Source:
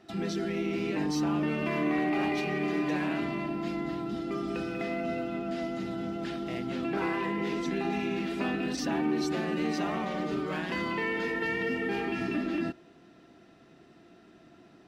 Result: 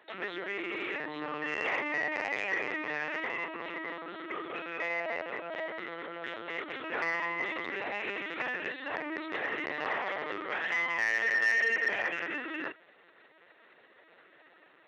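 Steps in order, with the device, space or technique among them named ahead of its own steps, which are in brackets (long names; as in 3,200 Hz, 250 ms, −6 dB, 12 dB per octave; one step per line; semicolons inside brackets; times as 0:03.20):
talking toy (linear-prediction vocoder at 8 kHz pitch kept; high-pass filter 610 Hz 12 dB per octave; parametric band 1,900 Hz +9 dB 0.39 octaves; soft clipping −22.5 dBFS, distortion −19 dB)
level +2.5 dB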